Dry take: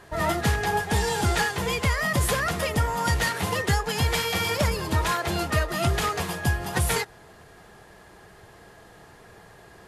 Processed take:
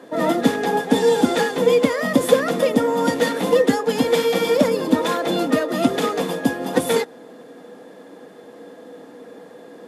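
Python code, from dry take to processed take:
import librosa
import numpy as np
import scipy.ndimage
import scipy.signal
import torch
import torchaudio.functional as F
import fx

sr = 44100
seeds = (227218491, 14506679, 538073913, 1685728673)

y = scipy.signal.sosfilt(scipy.signal.butter(4, 200.0, 'highpass', fs=sr, output='sos'), x)
y = fx.tilt_shelf(y, sr, db=3.5, hz=750.0)
y = fx.small_body(y, sr, hz=(270.0, 490.0, 3500.0), ring_ms=65, db=17)
y = y * librosa.db_to_amplitude(2.0)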